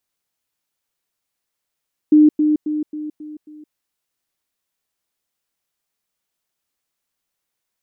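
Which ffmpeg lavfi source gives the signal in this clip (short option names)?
-f lavfi -i "aevalsrc='pow(10,(-6.5-6*floor(t/0.27))/20)*sin(2*PI*303*t)*clip(min(mod(t,0.27),0.17-mod(t,0.27))/0.005,0,1)':d=1.62:s=44100"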